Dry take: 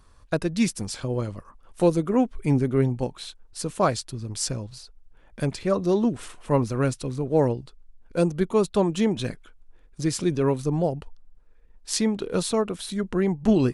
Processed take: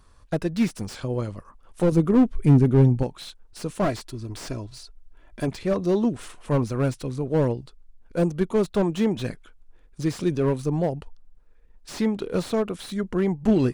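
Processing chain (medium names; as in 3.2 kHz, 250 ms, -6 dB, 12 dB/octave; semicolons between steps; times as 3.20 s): 1.92–3.03 s: bass shelf 350 Hz +8 dB; 3.84–5.48 s: comb 3 ms, depth 55%; slew-rate limiter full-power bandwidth 69 Hz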